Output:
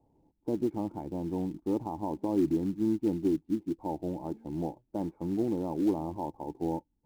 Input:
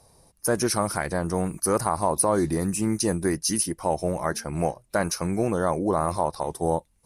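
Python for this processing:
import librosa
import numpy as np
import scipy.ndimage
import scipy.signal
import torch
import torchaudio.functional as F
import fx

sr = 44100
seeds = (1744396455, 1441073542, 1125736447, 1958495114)

p1 = fx.formant_cascade(x, sr, vowel='u')
p2 = fx.quant_float(p1, sr, bits=2)
y = p1 + (p2 * 10.0 ** (-6.5 / 20.0))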